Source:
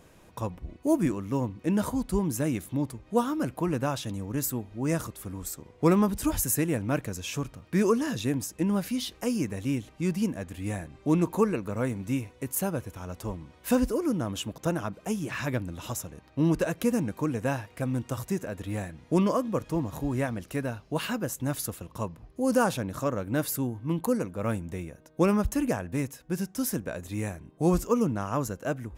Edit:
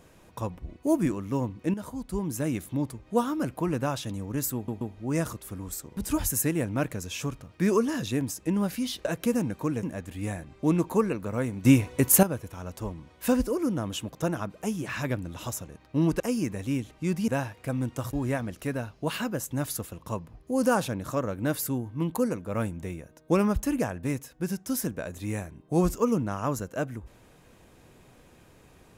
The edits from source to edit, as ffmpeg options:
-filter_complex "[0:a]asplit=12[s0][s1][s2][s3][s4][s5][s6][s7][s8][s9][s10][s11];[s0]atrim=end=1.74,asetpts=PTS-STARTPTS,afade=t=out:st=1.736:d=0.004:c=hsin:silence=0.237137[s12];[s1]atrim=start=1.74:end=4.682,asetpts=PTS-STARTPTS,afade=t=in:d=0.83:silence=0.237137[s13];[s2]atrim=start=4.548:end=4.682[s14];[s3]atrim=start=4.548:end=5.712[s15];[s4]atrim=start=6.098:end=9.182[s16];[s5]atrim=start=16.628:end=17.412[s17];[s6]atrim=start=10.258:end=12.082[s18];[s7]atrim=start=12.078:end=12.662,asetpts=PTS-STARTPTS,volume=3.55[s19];[s8]atrim=start=12.658:end=16.632[s20];[s9]atrim=start=9.178:end=10.262[s21];[s10]atrim=start=17.408:end=18.262[s22];[s11]atrim=start=20.018[s23];[s12][s13]concat=n=2:v=0:a=1[s24];[s24][s14]acrossfade=d=0.004:c1=hsin:c2=hsin[s25];[s25][s15]acrossfade=d=0.004:c1=hsin:c2=hsin[s26];[s26][s16]acrossfade=d=0.004:c1=hsin:c2=hsin[s27];[s27][s17]acrossfade=d=0.004:c1=hsin:c2=hsin[s28];[s28][s18]acrossfade=d=0.004:c1=hsin:c2=hsin[s29];[s29][s19]acrossfade=d=0.004:c1=hsin:c2=hsin[s30];[s30][s20]acrossfade=d=0.004:c1=hsin:c2=hsin[s31];[s31][s21]acrossfade=d=0.004:c1=hsin:c2=hsin[s32];[s32][s22]acrossfade=d=0.004:c1=hsin:c2=hsin[s33];[s33][s23]acrossfade=d=0.004:c1=hsin:c2=hsin"

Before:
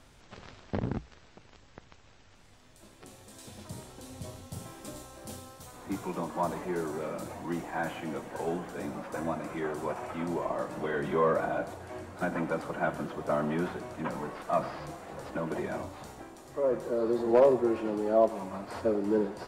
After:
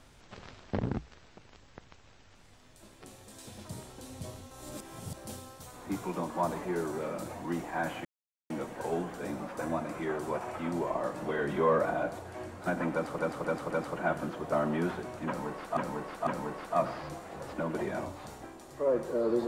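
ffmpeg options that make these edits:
-filter_complex "[0:a]asplit=9[s0][s1][s2][s3][s4][s5][s6][s7][s8];[s0]atrim=end=4.512[s9];[s1]atrim=start=4.508:end=5.142,asetpts=PTS-STARTPTS,areverse[s10];[s2]atrim=start=5.138:end=8.05,asetpts=PTS-STARTPTS,afade=t=out:st=2.908:d=0.004:c=hsin,apad=pad_dur=0.45[s11];[s3]atrim=start=8.05:end=12.742,asetpts=PTS-STARTPTS,afade=t=in:d=0.004:c=hsin[s12];[s4]atrim=start=12.478:end=12.742[s13];[s5]atrim=start=12.478:end=12.742[s14];[s6]atrim=start=12.478:end=14.542[s15];[s7]atrim=start=14.038:end=14.542[s16];[s8]atrim=start=14.038[s17];[s9][s10]acrossfade=d=0.004:c1=hsin:c2=hsin[s18];[s11][s12]concat=n=2:v=0:a=1[s19];[s18][s19]acrossfade=d=0.004:c1=hsin:c2=hsin[s20];[s20][s13]acrossfade=d=0.004:c1=hsin:c2=hsin[s21];[s21][s14]acrossfade=d=0.004:c1=hsin:c2=hsin[s22];[s22][s15]acrossfade=d=0.004:c1=hsin:c2=hsin[s23];[s23][s16]acrossfade=d=0.004:c1=hsin:c2=hsin[s24];[s24][s17]acrossfade=d=0.004:c1=hsin:c2=hsin"

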